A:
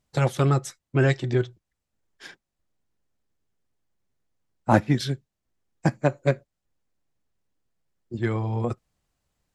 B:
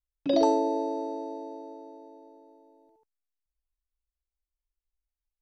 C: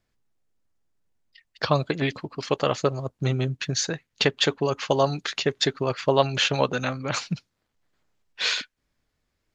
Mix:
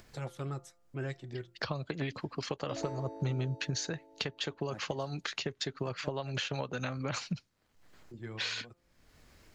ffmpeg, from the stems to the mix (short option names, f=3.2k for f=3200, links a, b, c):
-filter_complex "[0:a]bandreject=f=173.1:t=h:w=4,bandreject=f=346.2:t=h:w=4,bandreject=f=519.3:t=h:w=4,bandreject=f=692.4:t=h:w=4,bandreject=f=865.5:t=h:w=4,bandreject=f=1.0386k:t=h:w=4,bandreject=f=1.2117k:t=h:w=4,bandreject=f=1.3848k:t=h:w=4,volume=-17.5dB[a];[1:a]asoftclip=type=tanh:threshold=-19dB,adelay=2400,volume=-16.5dB[b];[2:a]acompressor=threshold=-25dB:ratio=6,bandreject=f=3.5k:w=28,acrossover=split=120[c][d];[d]acompressor=threshold=-35dB:ratio=3[e];[c][e]amix=inputs=2:normalize=0,volume=0dB,asplit=2[f][g];[g]apad=whole_len=420915[h];[a][h]sidechaincompress=threshold=-43dB:ratio=10:attack=5.6:release=497[i];[i][b][f]amix=inputs=3:normalize=0,acompressor=mode=upward:threshold=-44dB:ratio=2.5"